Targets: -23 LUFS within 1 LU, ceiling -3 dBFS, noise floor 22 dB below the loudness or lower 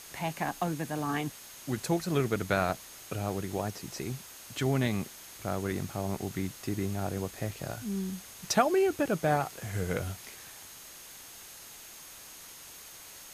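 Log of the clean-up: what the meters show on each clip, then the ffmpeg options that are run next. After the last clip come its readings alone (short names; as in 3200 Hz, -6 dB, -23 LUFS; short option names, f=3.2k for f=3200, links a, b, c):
steady tone 6500 Hz; tone level -55 dBFS; noise floor -49 dBFS; noise floor target -55 dBFS; loudness -32.5 LUFS; peak -11.5 dBFS; loudness target -23.0 LUFS
-> -af "bandreject=f=6.5k:w=30"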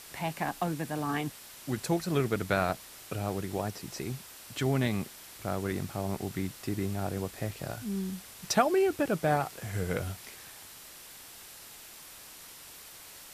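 steady tone none; noise floor -49 dBFS; noise floor target -55 dBFS
-> -af "afftdn=nr=6:nf=-49"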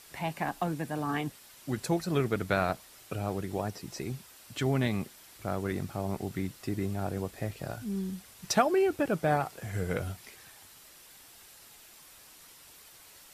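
noise floor -54 dBFS; noise floor target -55 dBFS
-> -af "afftdn=nr=6:nf=-54"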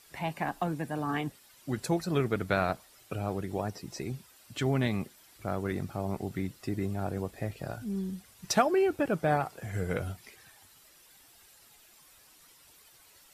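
noise floor -59 dBFS; loudness -32.5 LUFS; peak -11.5 dBFS; loudness target -23.0 LUFS
-> -af "volume=9.5dB,alimiter=limit=-3dB:level=0:latency=1"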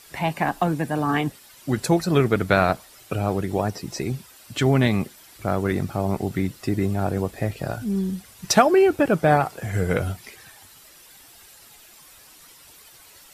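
loudness -23.0 LUFS; peak -3.0 dBFS; noise floor -49 dBFS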